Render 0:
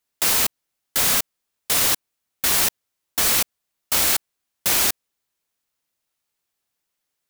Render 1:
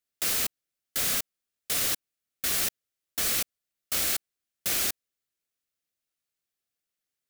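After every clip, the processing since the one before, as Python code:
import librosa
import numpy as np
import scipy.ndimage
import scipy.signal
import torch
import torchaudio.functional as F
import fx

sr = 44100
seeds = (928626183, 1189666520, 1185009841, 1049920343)

y = fx.peak_eq(x, sr, hz=930.0, db=-11.0, octaves=0.38)
y = F.gain(torch.from_numpy(y), -8.0).numpy()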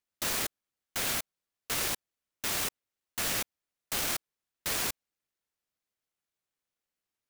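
y = fx.noise_mod_delay(x, sr, seeds[0], noise_hz=3000.0, depth_ms=0.054)
y = F.gain(torch.from_numpy(y), -2.5).numpy()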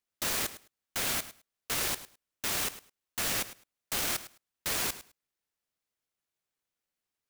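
y = fx.echo_feedback(x, sr, ms=105, feedback_pct=16, wet_db=-15)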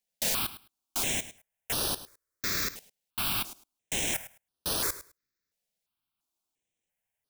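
y = fx.phaser_held(x, sr, hz=2.9, low_hz=320.0, high_hz=7200.0)
y = F.gain(torch.from_numpy(y), 4.0).numpy()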